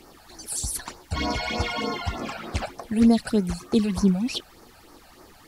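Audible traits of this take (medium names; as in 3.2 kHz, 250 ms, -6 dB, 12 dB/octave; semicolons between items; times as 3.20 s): phasing stages 12, 3.3 Hz, lowest notch 330–3300 Hz; a quantiser's noise floor 10-bit, dither triangular; Vorbis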